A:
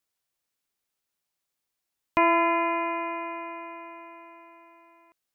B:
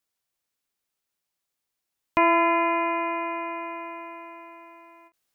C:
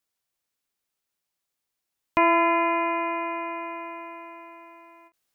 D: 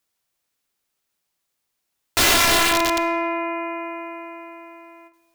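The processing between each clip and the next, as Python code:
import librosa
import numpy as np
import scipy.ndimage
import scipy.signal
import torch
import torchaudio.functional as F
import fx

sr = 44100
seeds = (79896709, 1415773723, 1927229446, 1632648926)

y1 = fx.rider(x, sr, range_db=3, speed_s=2.0)
y1 = fx.end_taper(y1, sr, db_per_s=380.0)
y1 = y1 * 10.0 ** (3.0 / 20.0)
y2 = y1
y3 = (np.mod(10.0 ** (17.5 / 20.0) * y2 + 1.0, 2.0) - 1.0) / 10.0 ** (17.5 / 20.0)
y3 = fx.rev_freeverb(y3, sr, rt60_s=1.4, hf_ratio=0.75, predelay_ms=5, drr_db=13.0)
y3 = y3 * 10.0 ** (6.0 / 20.0)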